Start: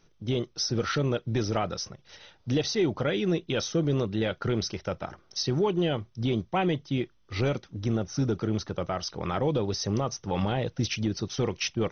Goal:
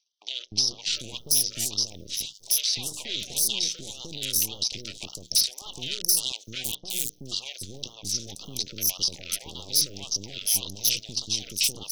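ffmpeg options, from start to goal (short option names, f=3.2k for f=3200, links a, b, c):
-filter_complex "[0:a]aemphasis=mode=production:type=75kf,bandreject=f=60:t=h:w=6,bandreject=f=120:t=h:w=6,bandreject=f=180:t=h:w=6,bandreject=f=240:t=h:w=6,bandreject=f=300:t=h:w=6,agate=range=-11dB:threshold=-47dB:ratio=16:detection=peak,tiltshelf=f=820:g=5,alimiter=limit=-22dB:level=0:latency=1:release=19,acompressor=threshold=-38dB:ratio=5,asplit=3[a][b][c];[a]afade=t=out:st=5.91:d=0.02[d];[b]acrusher=bits=3:dc=4:mix=0:aa=0.000001,afade=t=in:st=5.91:d=0.02,afade=t=out:st=6.35:d=0.02[e];[c]afade=t=in:st=6.35:d=0.02[f];[d][e][f]amix=inputs=3:normalize=0,aeval=exprs='0.0447*(cos(1*acos(clip(val(0)/0.0447,-1,1)))-cos(1*PI/2))+0.01*(cos(6*acos(clip(val(0)/0.0447,-1,1)))-cos(6*PI/2))+0.00501*(cos(7*acos(clip(val(0)/0.0447,-1,1)))-cos(7*PI/2))':c=same,aexciter=amount=10.8:drive=8.1:freq=2.6k,acrossover=split=590|5700[g][h][i];[g]adelay=300[j];[i]adelay=730[k];[j][h][k]amix=inputs=3:normalize=0,afftfilt=real='re*(1-between(b*sr/1024,880*pow(2000/880,0.5+0.5*sin(2*PI*1.8*pts/sr))/1.41,880*pow(2000/880,0.5+0.5*sin(2*PI*1.8*pts/sr))*1.41))':imag='im*(1-between(b*sr/1024,880*pow(2000/880,0.5+0.5*sin(2*PI*1.8*pts/sr))/1.41,880*pow(2000/880,0.5+0.5*sin(2*PI*1.8*pts/sr))*1.41))':win_size=1024:overlap=0.75,volume=-3.5dB"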